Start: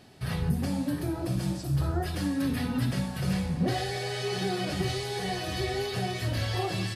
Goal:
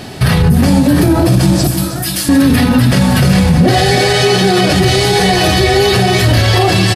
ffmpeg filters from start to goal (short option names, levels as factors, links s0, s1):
-filter_complex "[0:a]asettb=1/sr,asplit=3[s0][s1][s2];[s0]atrim=end=1.674[s3];[s1]atrim=start=1.67:end=2.29,asetpts=PTS-STARTPTS,afade=t=in:d=0.004:c=qsin,afade=t=out:st=0.616:d=0.004:c=qsin,aderivative[s4];[s2]atrim=start=2.286[s5];[s3][s4]acrossfade=d=0.004:c1=hsin:c2=qsin[s6];[s6][s5]acrossfade=d=0.004:c1=qsin:c2=hsin,asplit=2[s7][s8];[s8]aecho=0:1:317|634|951|1268|1585:0.237|0.109|0.0502|0.0231|0.0106[s9];[s7][s9]amix=inputs=2:normalize=0,alimiter=level_in=22.4:limit=0.891:release=50:level=0:latency=1,volume=0.891"